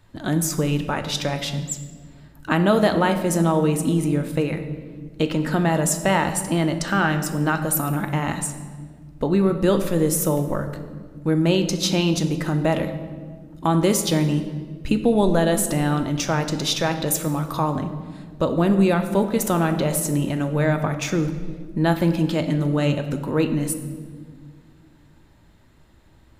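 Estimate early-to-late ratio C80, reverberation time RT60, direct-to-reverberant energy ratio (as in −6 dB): 11.5 dB, 1.7 s, 7.0 dB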